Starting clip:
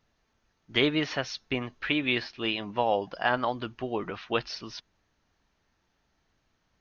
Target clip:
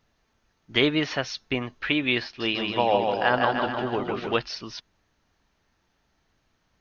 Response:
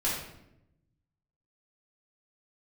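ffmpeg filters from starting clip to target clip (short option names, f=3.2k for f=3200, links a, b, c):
-filter_complex "[0:a]asettb=1/sr,asplit=3[a][b][c];[a]atrim=end=2.244[d];[b]atrim=start=2.24:end=4.36,asetpts=PTS-STARTPTS,afade=t=in:d=0.004:c=qsin,afade=t=out:st=2.116:d=0.004:c=qsin,aecho=1:1:160|304|433.6|550.2|655.2:0.631|0.398|0.251|0.158|0.1,atrim=end_sample=93492[e];[c]atrim=start=4.356[f];[d][e]acrossfade=d=0.004:c1=hsin:c2=qsin[g];[g][f]acrossfade=d=0.004:c1=qsin:c2=hsin,volume=3dB"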